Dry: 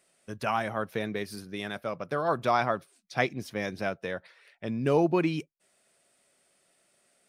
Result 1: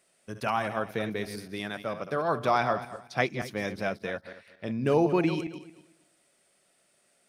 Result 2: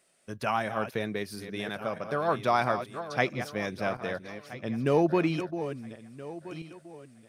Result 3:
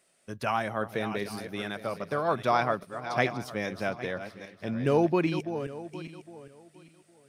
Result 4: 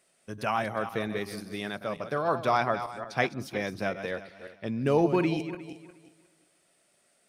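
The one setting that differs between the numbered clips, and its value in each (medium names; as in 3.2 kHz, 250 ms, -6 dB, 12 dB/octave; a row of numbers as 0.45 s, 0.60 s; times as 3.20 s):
backward echo that repeats, time: 114 ms, 662 ms, 405 ms, 179 ms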